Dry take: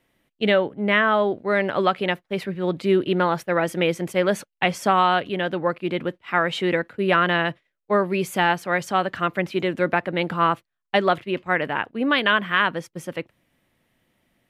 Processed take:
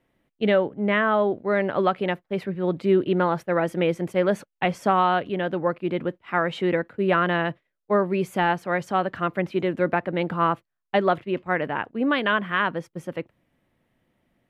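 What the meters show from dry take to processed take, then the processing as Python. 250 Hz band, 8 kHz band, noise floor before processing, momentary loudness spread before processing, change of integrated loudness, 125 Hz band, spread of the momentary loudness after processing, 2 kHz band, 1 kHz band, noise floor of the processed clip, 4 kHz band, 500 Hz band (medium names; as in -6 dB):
0.0 dB, no reading, -78 dBFS, 7 LU, -2.0 dB, 0.0 dB, 7 LU, -4.5 dB, -2.0 dB, -79 dBFS, -7.0 dB, -0.5 dB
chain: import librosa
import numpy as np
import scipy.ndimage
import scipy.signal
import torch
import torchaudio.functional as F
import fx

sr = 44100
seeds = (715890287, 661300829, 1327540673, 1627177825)

y = fx.high_shelf(x, sr, hz=2100.0, db=-10.5)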